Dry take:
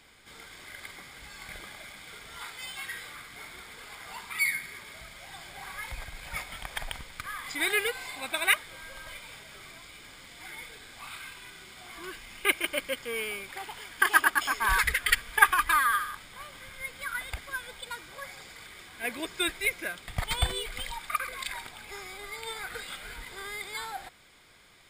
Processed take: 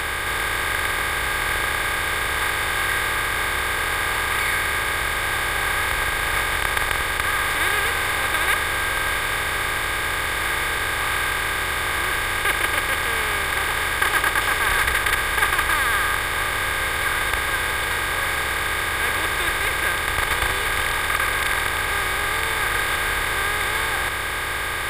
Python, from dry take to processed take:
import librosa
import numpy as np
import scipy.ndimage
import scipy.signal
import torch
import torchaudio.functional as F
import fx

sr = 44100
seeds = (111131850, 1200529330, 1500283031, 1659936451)

y = fx.bin_compress(x, sr, power=0.2)
y = y * 10.0 ** (-5.5 / 20.0)